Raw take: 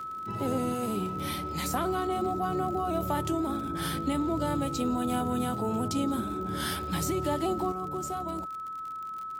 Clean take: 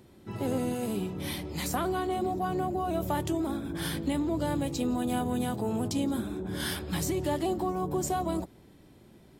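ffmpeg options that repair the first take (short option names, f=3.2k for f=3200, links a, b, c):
-af "adeclick=t=4,bandreject=f=1.3k:w=30,asetnsamples=n=441:p=0,asendcmd='7.72 volume volume 6dB',volume=0dB"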